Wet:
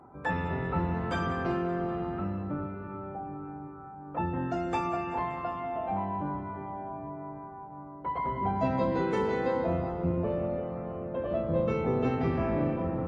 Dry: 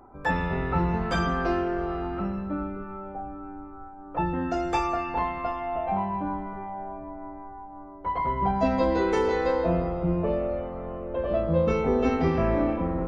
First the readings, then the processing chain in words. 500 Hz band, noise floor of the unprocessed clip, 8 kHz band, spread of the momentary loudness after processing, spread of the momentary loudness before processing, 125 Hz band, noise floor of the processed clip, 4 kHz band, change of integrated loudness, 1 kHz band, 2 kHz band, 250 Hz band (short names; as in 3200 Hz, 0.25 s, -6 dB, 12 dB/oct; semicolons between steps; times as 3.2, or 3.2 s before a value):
-4.5 dB, -43 dBFS, n/a, 11 LU, 15 LU, -2.5 dB, -45 dBFS, -7.0 dB, -4.5 dB, -4.5 dB, -5.0 dB, -4.0 dB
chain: octaver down 1 oct, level -1 dB; split-band echo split 590 Hz, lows 0.34 s, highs 0.191 s, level -13 dB; in parallel at -2.5 dB: compressor, threshold -34 dBFS, peak gain reduction 15.5 dB; on the sum: HPF 91 Hz 12 dB/oct; bell 5400 Hz -7 dB 0.7 oct; gain -6.5 dB; Vorbis 48 kbps 22050 Hz